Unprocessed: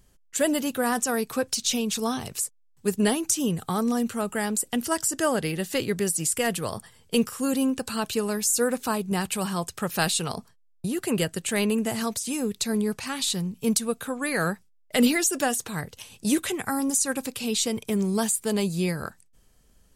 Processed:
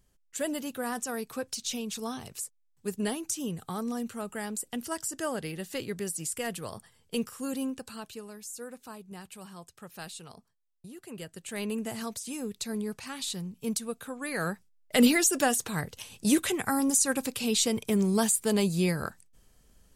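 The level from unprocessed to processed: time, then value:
0:07.65 −8.5 dB
0:08.32 −18 dB
0:11.10 −18 dB
0:11.74 −8 dB
0:14.18 −8 dB
0:15.02 −0.5 dB

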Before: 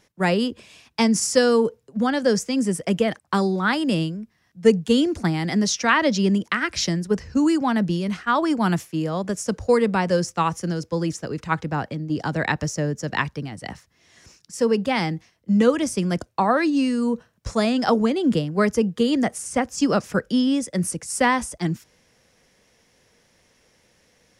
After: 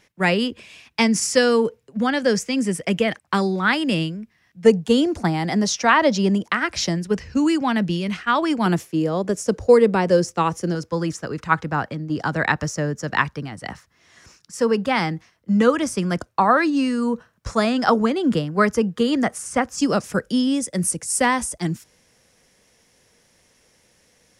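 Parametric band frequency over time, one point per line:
parametric band +6.5 dB 1.1 octaves
2,300 Hz
from 0:04.66 770 Hz
from 0:06.98 2,600 Hz
from 0:08.66 410 Hz
from 0:10.75 1,300 Hz
from 0:19.79 9,600 Hz

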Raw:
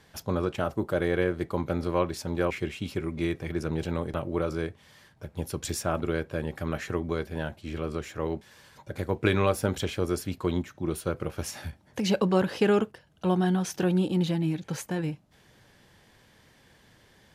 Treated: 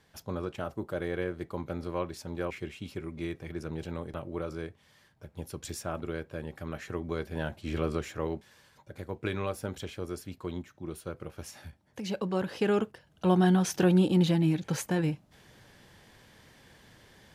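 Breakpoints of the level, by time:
0:06.80 −7 dB
0:07.80 +2.5 dB
0:08.90 −9 dB
0:12.10 −9 dB
0:13.44 +2 dB

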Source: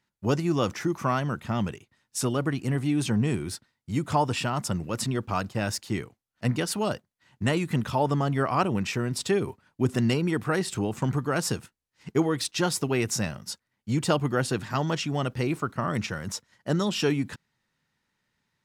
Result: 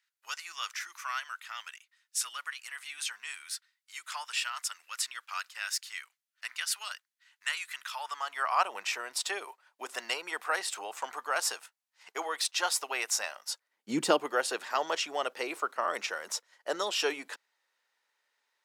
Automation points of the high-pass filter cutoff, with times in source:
high-pass filter 24 dB per octave
0:07.81 1,400 Hz
0:08.75 660 Hz
0:13.48 660 Hz
0:14.00 230 Hz
0:14.32 480 Hz

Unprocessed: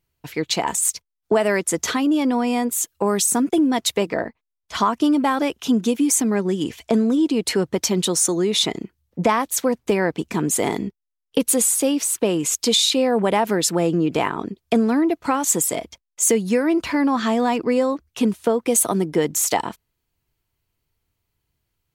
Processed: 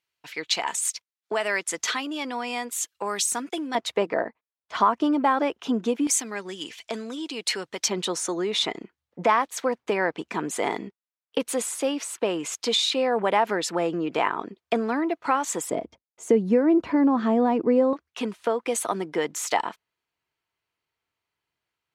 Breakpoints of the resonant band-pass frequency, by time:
resonant band-pass, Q 0.57
2,700 Hz
from 0:03.75 890 Hz
from 0:06.07 3,200 Hz
from 0:07.88 1,300 Hz
from 0:15.70 360 Hz
from 0:17.93 1,500 Hz

